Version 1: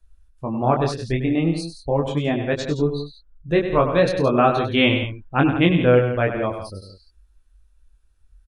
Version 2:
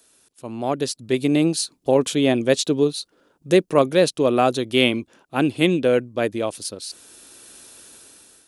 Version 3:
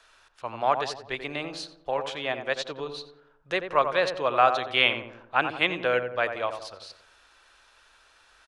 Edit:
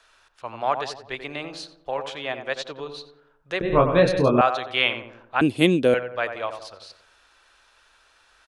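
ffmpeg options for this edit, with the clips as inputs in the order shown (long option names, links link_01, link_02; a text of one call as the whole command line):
ffmpeg -i take0.wav -i take1.wav -i take2.wav -filter_complex "[2:a]asplit=3[link_01][link_02][link_03];[link_01]atrim=end=3.612[link_04];[0:a]atrim=start=3.608:end=4.412[link_05];[link_02]atrim=start=4.408:end=5.412[link_06];[1:a]atrim=start=5.408:end=5.942[link_07];[link_03]atrim=start=5.938[link_08];[link_04][link_05]acrossfade=duration=0.004:curve1=hsin:curve2=hsin[link_09];[link_09][link_06]acrossfade=duration=0.004:curve1=hsin:curve2=hsin[link_10];[link_10][link_07]acrossfade=duration=0.004:curve1=hsin:curve2=hsin[link_11];[link_11][link_08]acrossfade=duration=0.004:curve1=hsin:curve2=hsin" out.wav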